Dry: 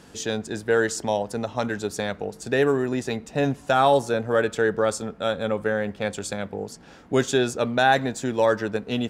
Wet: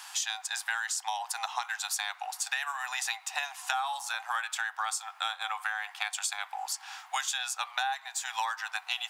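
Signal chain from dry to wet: rippled Chebyshev high-pass 750 Hz, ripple 3 dB; high shelf 9000 Hz +10.5 dB; compressor 16:1, threshold -37 dBFS, peak gain reduction 21.5 dB; gain +8.5 dB

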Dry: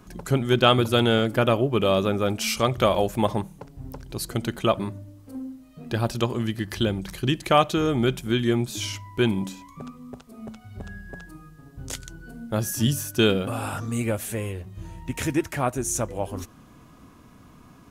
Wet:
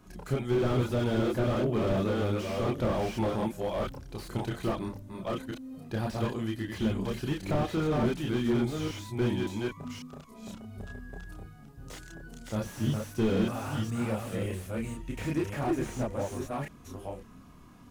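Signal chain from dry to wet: reverse delay 0.555 s, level -4 dB; chorus voices 6, 0.26 Hz, delay 30 ms, depth 3.2 ms; slew limiter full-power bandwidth 36 Hz; gain -2.5 dB

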